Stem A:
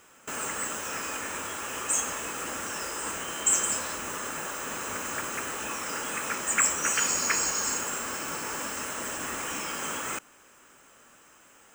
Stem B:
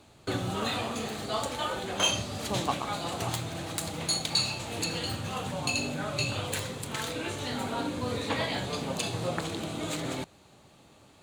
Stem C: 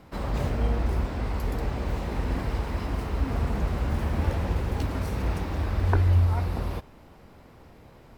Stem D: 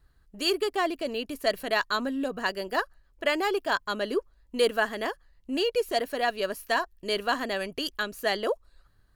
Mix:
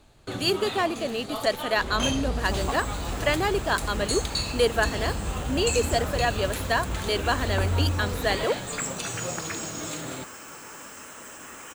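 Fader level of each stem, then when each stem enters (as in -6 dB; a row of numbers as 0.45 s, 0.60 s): -8.5 dB, -2.5 dB, -4.5 dB, +1.5 dB; 2.20 s, 0.00 s, 1.65 s, 0.00 s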